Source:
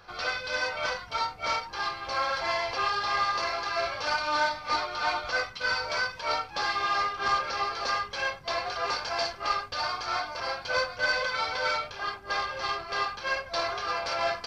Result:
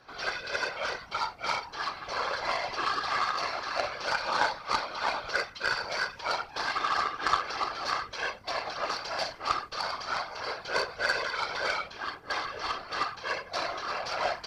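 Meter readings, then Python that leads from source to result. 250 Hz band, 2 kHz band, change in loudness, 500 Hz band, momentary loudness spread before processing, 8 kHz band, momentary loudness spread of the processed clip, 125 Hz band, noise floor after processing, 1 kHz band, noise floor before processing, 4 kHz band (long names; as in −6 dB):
0.0 dB, −2.0 dB, −2.0 dB, −2.5 dB, 5 LU, −1.5 dB, 5 LU, −3.0 dB, −48 dBFS, −2.0 dB, −45 dBFS, −2.5 dB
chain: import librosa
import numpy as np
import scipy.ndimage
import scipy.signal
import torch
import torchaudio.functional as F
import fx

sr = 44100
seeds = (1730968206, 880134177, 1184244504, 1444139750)

y = fx.whisperise(x, sr, seeds[0])
y = fx.cheby_harmonics(y, sr, harmonics=(3,), levels_db=(-14,), full_scale_db=-11.5)
y = y * 10.0 ** (4.5 / 20.0)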